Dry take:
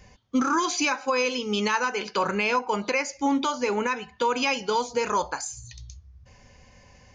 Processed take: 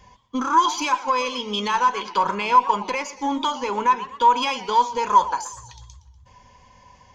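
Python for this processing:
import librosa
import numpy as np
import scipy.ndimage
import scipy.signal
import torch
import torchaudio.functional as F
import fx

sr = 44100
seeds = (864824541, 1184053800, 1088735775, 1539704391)

y = fx.diode_clip(x, sr, knee_db=-15.0)
y = fx.small_body(y, sr, hz=(980.0, 3300.0), ring_ms=35, db=17)
y = fx.echo_warbled(y, sr, ms=121, feedback_pct=48, rate_hz=2.8, cents=183, wet_db=-16.0)
y = F.gain(torch.from_numpy(y), -1.5).numpy()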